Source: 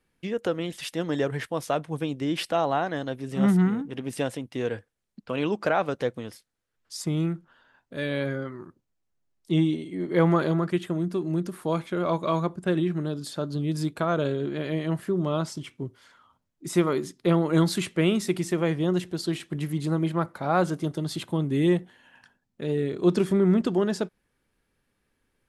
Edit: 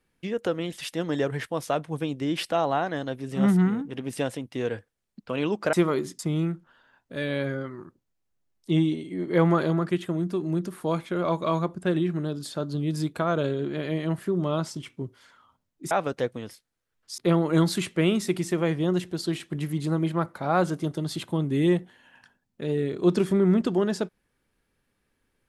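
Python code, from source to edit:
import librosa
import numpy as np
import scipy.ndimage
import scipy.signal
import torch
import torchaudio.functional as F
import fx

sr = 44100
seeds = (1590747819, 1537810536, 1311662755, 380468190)

y = fx.edit(x, sr, fx.swap(start_s=5.73, length_s=1.27, other_s=16.72, other_length_s=0.46), tone=tone)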